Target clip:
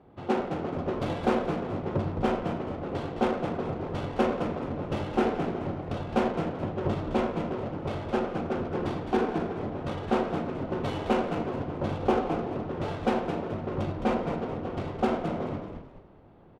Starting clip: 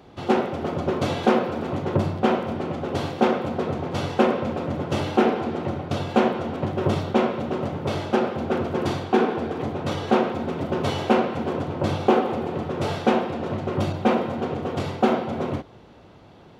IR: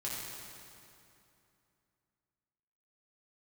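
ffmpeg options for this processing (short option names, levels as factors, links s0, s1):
-filter_complex "[0:a]adynamicsmooth=sensitivity=3.5:basefreq=1700,asplit=5[s0][s1][s2][s3][s4];[s1]adelay=213,afreqshift=-58,volume=0.447[s5];[s2]adelay=426,afreqshift=-116,volume=0.148[s6];[s3]adelay=639,afreqshift=-174,volume=0.0484[s7];[s4]adelay=852,afreqshift=-232,volume=0.016[s8];[s0][s5][s6][s7][s8]amix=inputs=5:normalize=0,volume=0.473"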